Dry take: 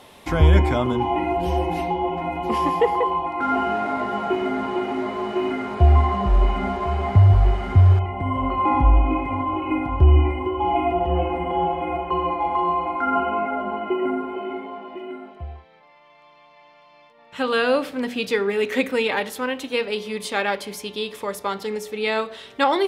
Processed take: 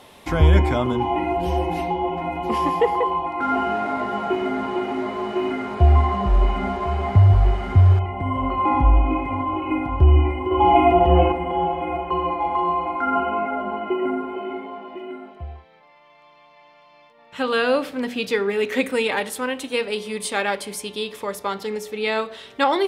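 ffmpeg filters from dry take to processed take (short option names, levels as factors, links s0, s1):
-filter_complex "[0:a]asettb=1/sr,asplit=3[s0][s1][s2];[s0]atrim=end=18.824[s3];[s1]atrim=start=18.82:end=21.04,asetpts=PTS-STARTPTS,afade=t=in:d=0.004:c=qsin,afade=t=out:st=2.216:d=0.004:c=qsin,equalizer=f=8900:w=2.6:g=9.5[s4];[s2]atrim=start=21.036[s5];[s3][s4]acrossfade=d=0.004:c1=hsin:c2=qsin[s6];[s6][s5]acrossfade=d=0.004:c1=qsin:c2=hsin,asplit=3[s7][s8][s9];[s7]atrim=end=10.512[s10];[s8]atrim=start=10.508:end=11.322,asetpts=PTS-STARTPTS,volume=2.11[s11];[s9]atrim=start=11.318[s12];[s10][s11]acrossfade=d=0.004:c1=hsin:c2=hsin[s13];[s13][s12]acrossfade=d=0.004:c1=hsin:c2=hsin"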